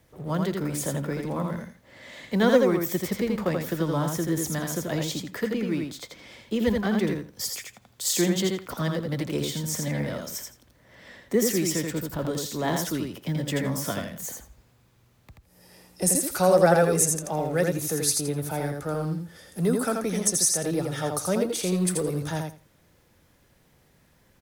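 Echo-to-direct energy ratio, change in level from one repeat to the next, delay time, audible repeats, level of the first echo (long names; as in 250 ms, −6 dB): −4.0 dB, −15.5 dB, 83 ms, 3, −4.0 dB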